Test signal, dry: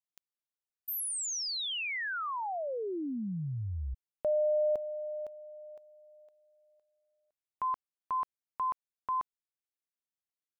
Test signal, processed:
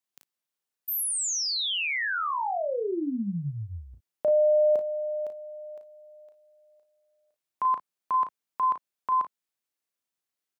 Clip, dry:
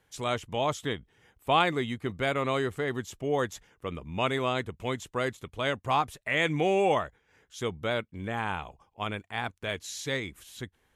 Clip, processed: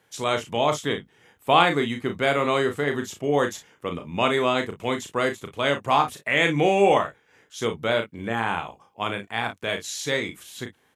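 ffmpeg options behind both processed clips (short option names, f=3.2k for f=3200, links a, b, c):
-af "highpass=140,aecho=1:1:35|55:0.473|0.178,volume=5.5dB"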